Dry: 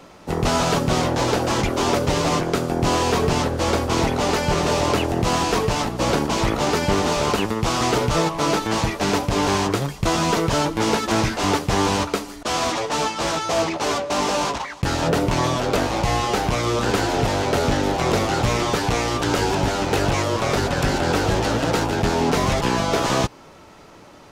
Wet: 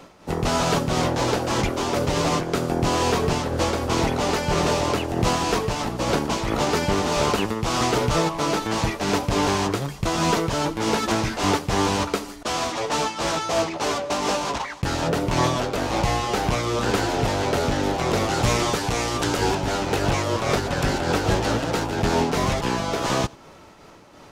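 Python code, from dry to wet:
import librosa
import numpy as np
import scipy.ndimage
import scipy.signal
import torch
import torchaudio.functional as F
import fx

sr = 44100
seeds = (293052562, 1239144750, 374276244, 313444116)

y = fx.peak_eq(x, sr, hz=9500.0, db=4.5, octaves=1.7, at=(18.3, 19.37))
y = y + 10.0 ** (-24.0 / 20.0) * np.pad(y, (int(91 * sr / 1000.0), 0))[:len(y)]
y = fx.am_noise(y, sr, seeds[0], hz=5.7, depth_pct=60)
y = F.gain(torch.from_numpy(y), 1.0).numpy()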